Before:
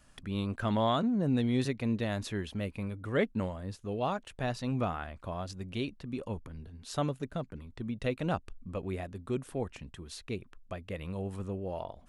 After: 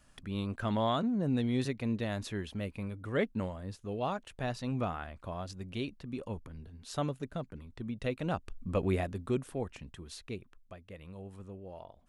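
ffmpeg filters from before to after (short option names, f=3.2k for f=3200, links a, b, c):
-af "volume=7dB,afade=t=in:st=8.36:d=0.47:silence=0.354813,afade=t=out:st=8.83:d=0.7:silence=0.375837,afade=t=out:st=10.09:d=0.68:silence=0.398107"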